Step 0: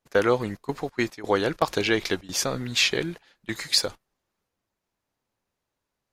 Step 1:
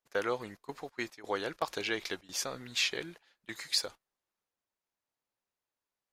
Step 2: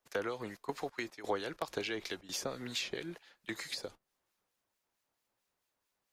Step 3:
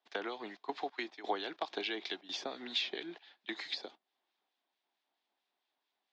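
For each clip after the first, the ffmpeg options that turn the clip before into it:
-af "lowshelf=f=320:g=-10.5,volume=-8.5dB"
-filter_complex "[0:a]acrossover=split=250|590[a][b][c];[a]acompressor=threshold=-56dB:ratio=4[d];[b]acompressor=threshold=-46dB:ratio=4[e];[c]acompressor=threshold=-47dB:ratio=4[f];[d][e][f]amix=inputs=3:normalize=0,acrossover=split=1800[g][h];[g]aeval=exprs='val(0)*(1-0.5/2+0.5/2*cos(2*PI*4.5*n/s))':c=same[i];[h]aeval=exprs='val(0)*(1-0.5/2-0.5/2*cos(2*PI*4.5*n/s))':c=same[j];[i][j]amix=inputs=2:normalize=0,volume=9dB"
-af "highpass=f=250:w=0.5412,highpass=f=250:w=1.3066,equalizer=f=510:t=q:w=4:g=-8,equalizer=f=750:t=q:w=4:g=6,equalizer=f=1.3k:t=q:w=4:g=-4,equalizer=f=3.5k:t=q:w=4:g=7,lowpass=f=4.7k:w=0.5412,lowpass=f=4.7k:w=1.3066"

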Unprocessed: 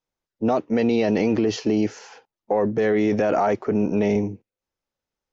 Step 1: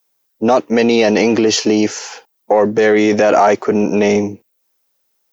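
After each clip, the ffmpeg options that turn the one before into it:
-af "aemphasis=mode=production:type=bsi,acontrast=84,volume=4dB"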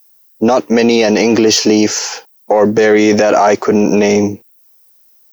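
-filter_complex "[0:a]acrossover=split=3500[a][b];[b]aexciter=amount=1.2:drive=8.4:freq=4.5k[c];[a][c]amix=inputs=2:normalize=0,alimiter=level_in=7dB:limit=-1dB:release=50:level=0:latency=1,volume=-1dB"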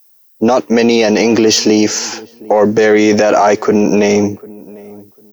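-filter_complex "[0:a]asplit=2[a][b];[b]adelay=748,lowpass=f=870:p=1,volume=-21.5dB,asplit=2[c][d];[d]adelay=748,lowpass=f=870:p=1,volume=0.26[e];[a][c][e]amix=inputs=3:normalize=0"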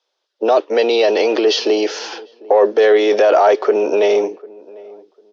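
-af "highpass=f=380:w=0.5412,highpass=f=380:w=1.3066,equalizer=f=400:t=q:w=4:g=4,equalizer=f=590:t=q:w=4:g=4,equalizer=f=2.1k:t=q:w=4:g=-5,equalizer=f=3.4k:t=q:w=4:g=6,lowpass=f=4.4k:w=0.5412,lowpass=f=4.4k:w=1.3066,volume=-3.5dB"

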